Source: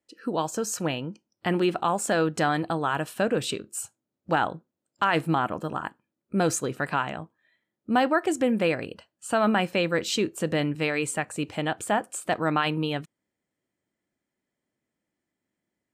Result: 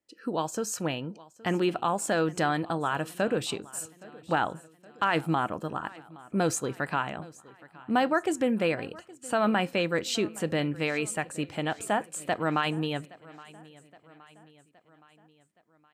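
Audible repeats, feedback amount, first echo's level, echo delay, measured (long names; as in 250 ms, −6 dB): 3, 54%, −21.5 dB, 819 ms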